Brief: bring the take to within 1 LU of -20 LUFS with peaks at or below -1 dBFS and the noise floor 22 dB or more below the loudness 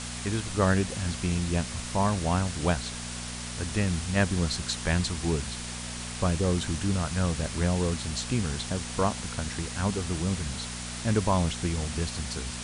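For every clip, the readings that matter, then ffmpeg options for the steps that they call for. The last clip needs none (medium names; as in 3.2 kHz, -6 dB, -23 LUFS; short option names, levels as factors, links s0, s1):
hum 60 Hz; highest harmonic 240 Hz; hum level -37 dBFS; noise floor -37 dBFS; noise floor target -51 dBFS; loudness -29.0 LUFS; peak level -9.5 dBFS; loudness target -20.0 LUFS
-> -af "bandreject=f=60:t=h:w=4,bandreject=f=120:t=h:w=4,bandreject=f=180:t=h:w=4,bandreject=f=240:t=h:w=4"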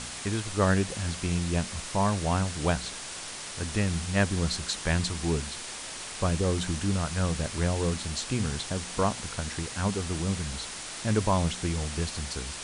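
hum not found; noise floor -39 dBFS; noise floor target -52 dBFS
-> -af "afftdn=nr=13:nf=-39"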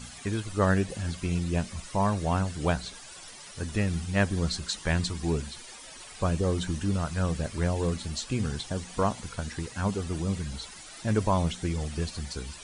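noise floor -46 dBFS; noise floor target -52 dBFS
-> -af "afftdn=nr=6:nf=-46"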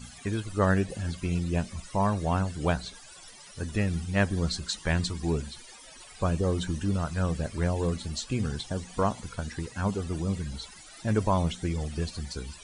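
noise floor -49 dBFS; noise floor target -52 dBFS
-> -af "afftdn=nr=6:nf=-49"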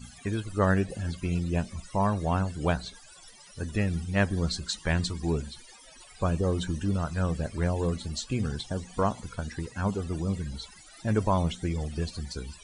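noise floor -52 dBFS; loudness -30.0 LUFS; peak level -10.0 dBFS; loudness target -20.0 LUFS
-> -af "volume=3.16,alimiter=limit=0.891:level=0:latency=1"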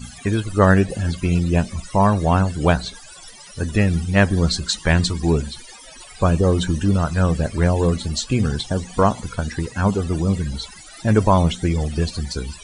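loudness -20.0 LUFS; peak level -1.0 dBFS; noise floor -42 dBFS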